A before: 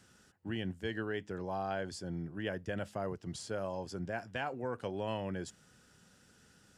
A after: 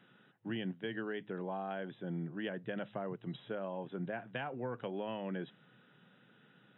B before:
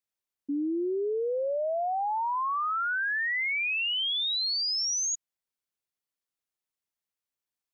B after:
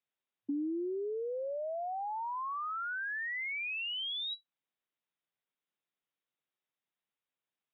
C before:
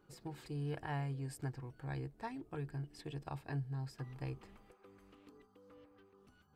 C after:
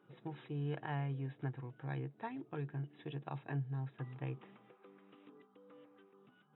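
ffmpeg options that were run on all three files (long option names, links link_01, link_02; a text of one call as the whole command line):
ffmpeg -i in.wav -filter_complex "[0:a]afftfilt=real='re*between(b*sr/4096,110,3900)':imag='im*between(b*sr/4096,110,3900)':win_size=4096:overlap=0.75,acrossover=split=200[link_01][link_02];[link_02]acompressor=threshold=-37dB:ratio=10[link_03];[link_01][link_03]amix=inputs=2:normalize=0,volume=1dB" out.wav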